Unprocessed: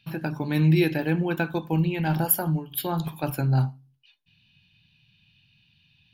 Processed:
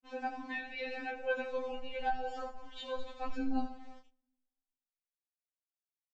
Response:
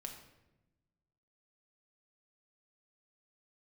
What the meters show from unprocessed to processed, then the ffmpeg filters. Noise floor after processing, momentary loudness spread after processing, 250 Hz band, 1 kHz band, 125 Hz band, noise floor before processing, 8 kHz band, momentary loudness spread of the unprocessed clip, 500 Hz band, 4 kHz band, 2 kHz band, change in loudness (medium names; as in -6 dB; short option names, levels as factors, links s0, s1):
under -85 dBFS, 9 LU, -16.5 dB, -5.0 dB, under -35 dB, -64 dBFS, under -30 dB, 9 LU, -8.5 dB, -9.0 dB, -7.5 dB, -14.0 dB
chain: -filter_complex "[0:a]aecho=1:1:82|164|246|328|410|492:0.316|0.164|0.0855|0.0445|0.0231|0.012,aresample=16000,aeval=exprs='val(0)*gte(abs(val(0)),0.00631)':c=same,aresample=44100,aemphasis=mode=reproduction:type=75kf,flanger=delay=18:depth=5.6:speed=0.87,asubboost=boost=10:cutoff=81,asplit=2[s0][s1];[1:a]atrim=start_sample=2205,lowshelf=f=500:g=-11[s2];[s1][s2]afir=irnorm=-1:irlink=0,volume=0.211[s3];[s0][s3]amix=inputs=2:normalize=0,acompressor=threshold=0.0501:ratio=6,afftfilt=real='re*3.46*eq(mod(b,12),0)':imag='im*3.46*eq(mod(b,12),0)':win_size=2048:overlap=0.75,volume=1.12"